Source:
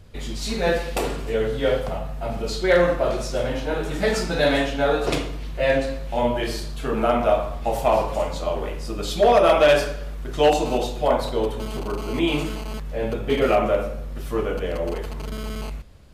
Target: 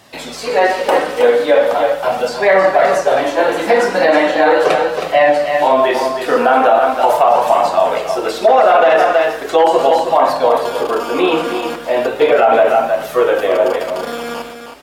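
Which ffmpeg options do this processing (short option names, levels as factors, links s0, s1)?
-filter_complex "[0:a]highpass=400,acrossover=split=2000[s0][s1];[s1]acompressor=threshold=0.00447:ratio=4[s2];[s0][s2]amix=inputs=2:normalize=0,flanger=delay=1.1:depth=3.3:regen=-38:speed=0.36:shape=sinusoidal,atempo=1,aecho=1:1:346:0.398,asetrate=48000,aresample=44100,alimiter=level_in=8.91:limit=0.891:release=50:level=0:latency=1,volume=0.891"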